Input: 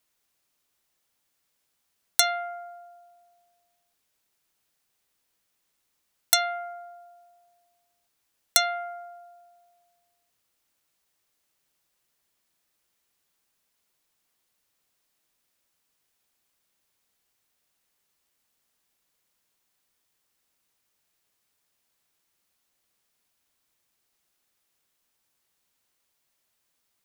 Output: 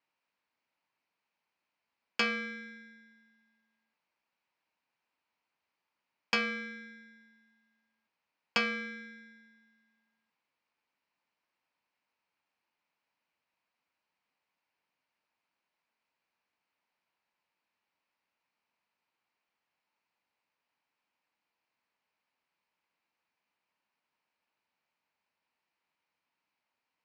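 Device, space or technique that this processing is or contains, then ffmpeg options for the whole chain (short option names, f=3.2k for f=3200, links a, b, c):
ring modulator pedal into a guitar cabinet: -af "aeval=exprs='val(0)*sgn(sin(2*PI*920*n/s))':c=same,highpass=110,equalizer=f=120:t=q:w=4:g=-9,equalizer=f=390:t=q:w=4:g=-4,equalizer=f=930:t=q:w=4:g=7,equalizer=f=2.4k:t=q:w=4:g=5,equalizer=f=3.5k:t=q:w=4:g=-8,lowpass=f=4.2k:w=0.5412,lowpass=f=4.2k:w=1.3066,volume=-5dB"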